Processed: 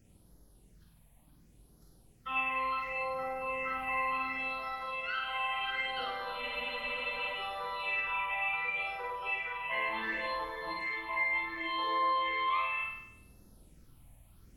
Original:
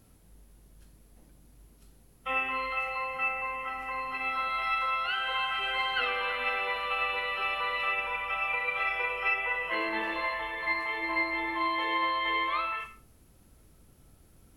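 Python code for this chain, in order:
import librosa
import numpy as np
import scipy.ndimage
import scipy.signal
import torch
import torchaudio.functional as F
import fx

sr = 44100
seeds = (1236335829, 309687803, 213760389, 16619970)

y = fx.rider(x, sr, range_db=10, speed_s=0.5)
y = fx.phaser_stages(y, sr, stages=6, low_hz=360.0, high_hz=2700.0, hz=0.69, feedback_pct=5)
y = fx.room_flutter(y, sr, wall_m=8.5, rt60_s=0.77)
y = fx.spec_freeze(y, sr, seeds[0], at_s=6.43, hold_s=0.93)
y = y * librosa.db_to_amplitude(-3.0)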